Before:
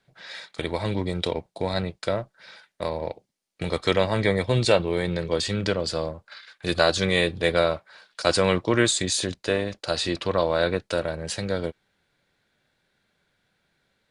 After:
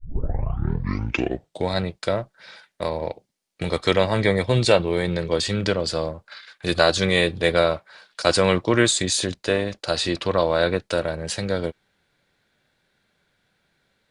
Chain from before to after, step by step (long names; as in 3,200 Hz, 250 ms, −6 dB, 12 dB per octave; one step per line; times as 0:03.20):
turntable start at the beginning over 1.70 s
level +2.5 dB